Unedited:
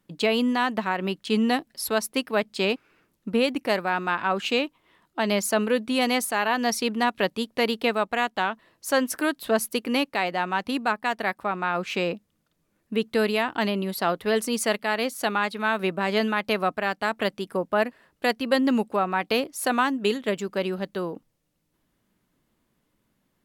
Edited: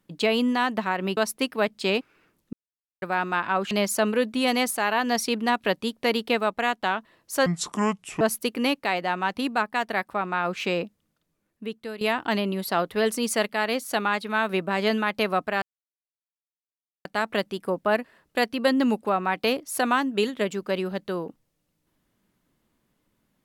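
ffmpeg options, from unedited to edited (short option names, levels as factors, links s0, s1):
-filter_complex "[0:a]asplit=9[s0][s1][s2][s3][s4][s5][s6][s7][s8];[s0]atrim=end=1.172[s9];[s1]atrim=start=1.918:end=3.28,asetpts=PTS-STARTPTS,afade=t=out:st=1.358:d=0.004:c=hsin[s10];[s2]atrim=start=3.28:end=3.77,asetpts=PTS-STARTPTS,volume=0[s11];[s3]atrim=start=3.77:end=4.462,asetpts=PTS-STARTPTS,afade=t=in:d=0.004:c=hsin[s12];[s4]atrim=start=5.248:end=9.004[s13];[s5]atrim=start=9:end=9.51,asetpts=PTS-STARTPTS,asetrate=29988,aresample=44100[s14];[s6]atrim=start=9.506:end=13.31,asetpts=PTS-STARTPTS,afade=t=out:st=2.614:d=1.19:silence=0.158489[s15];[s7]atrim=start=13.31:end=16.92,asetpts=PTS-STARTPTS,afade=t=in:d=0.004:c=hsin:silence=0.158489,afade=t=out:st=3.606:d=0.004:c=hsin,apad=pad_dur=1.43[s16];[s8]atrim=start=16.92,asetpts=PTS-STARTPTS,afade=t=in:d=0.004:c=hsin[s17];[s10][s11][s12]concat=n=3:v=0:a=1[s18];[s9][s18]acrossfade=d=0.004:c1=hsin:c2=hsin[s19];[s19][s13]acrossfade=d=0.004:c1=hsin:c2=hsin[s20];[s20][s14]acrossfade=d=0.004:c1=hsin:c2=hsin[s21];[s15][s16][s17]concat=n=3:v=0:a=1[s22];[s21][s22]acrossfade=d=0.004:c1=hsin:c2=hsin"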